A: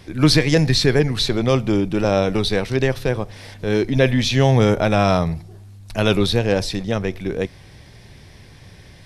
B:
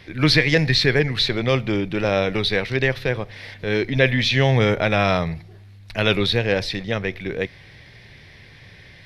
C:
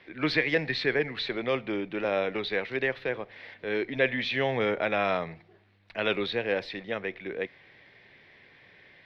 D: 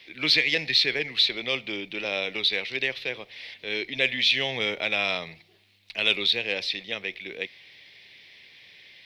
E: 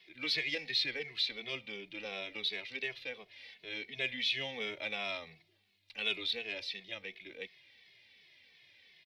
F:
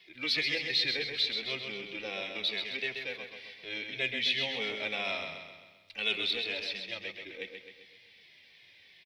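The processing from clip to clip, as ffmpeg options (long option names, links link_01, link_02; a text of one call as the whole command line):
ffmpeg -i in.wav -af "equalizer=frequency=125:width_type=o:width=1:gain=4,equalizer=frequency=500:width_type=o:width=1:gain=4,equalizer=frequency=2000:width_type=o:width=1:gain=12,equalizer=frequency=4000:width_type=o:width=1:gain=7,equalizer=frequency=8000:width_type=o:width=1:gain=-7,volume=-6.5dB" out.wav
ffmpeg -i in.wav -filter_complex "[0:a]acrossover=split=220 3600:gain=0.126 1 0.0794[link_01][link_02][link_03];[link_01][link_02][link_03]amix=inputs=3:normalize=0,volume=-6.5dB" out.wav
ffmpeg -i in.wav -af "aexciter=amount=6.9:drive=6.1:freq=2300,volume=-5dB" out.wav
ffmpeg -i in.wav -filter_complex "[0:a]asplit=2[link_01][link_02];[link_02]adelay=2.3,afreqshift=-2.8[link_03];[link_01][link_03]amix=inputs=2:normalize=1,volume=-8.5dB" out.wav
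ffmpeg -i in.wav -af "aecho=1:1:131|262|393|524|655|786:0.501|0.261|0.136|0.0705|0.0366|0.0191,volume=3dB" out.wav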